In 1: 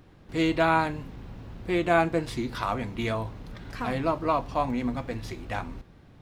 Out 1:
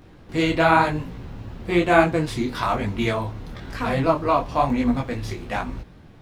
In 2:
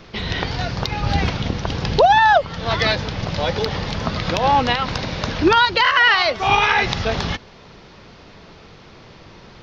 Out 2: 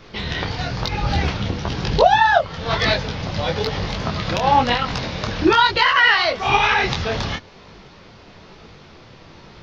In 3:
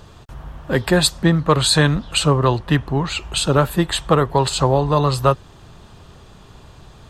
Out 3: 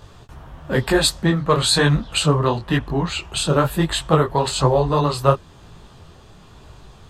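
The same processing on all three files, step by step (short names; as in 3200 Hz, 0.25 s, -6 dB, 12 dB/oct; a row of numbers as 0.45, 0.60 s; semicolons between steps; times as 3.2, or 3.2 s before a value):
detuned doubles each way 36 cents; normalise peaks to -1.5 dBFS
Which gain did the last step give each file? +9.5, +3.0, +2.5 dB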